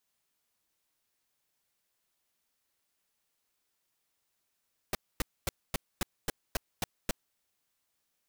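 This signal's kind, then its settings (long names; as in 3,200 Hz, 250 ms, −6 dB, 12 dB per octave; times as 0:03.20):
noise bursts pink, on 0.02 s, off 0.25 s, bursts 9, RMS −29.5 dBFS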